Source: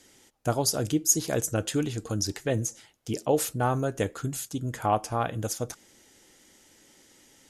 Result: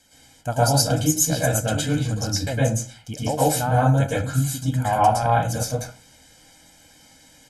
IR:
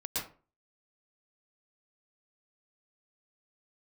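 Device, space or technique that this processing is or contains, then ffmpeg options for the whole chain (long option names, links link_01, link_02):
microphone above a desk: -filter_complex "[0:a]asettb=1/sr,asplit=3[link_01][link_02][link_03];[link_01]atrim=end=4.554[link_04];[link_02]atrim=start=4.55:end=5.09,asetpts=PTS-STARTPTS,afade=type=in:duration=0.004:curve=qsin,afade=type=out:start_time=0.536:duration=0.004:curve=qsin,highshelf=frequency=9700:gain=5[link_05];[link_03]atrim=start=5.086[link_06];[link_04][link_05]acrossfade=duration=0.004:curve1=hsin:curve2=qsin[link_07];[link_07][link_06]acrossfade=duration=0.004:curve1=qsin:curve2=hsin,aecho=1:1:1.3:0.79[link_08];[1:a]atrim=start_sample=2205[link_09];[link_08][link_09]afir=irnorm=-1:irlink=0,volume=1.5dB"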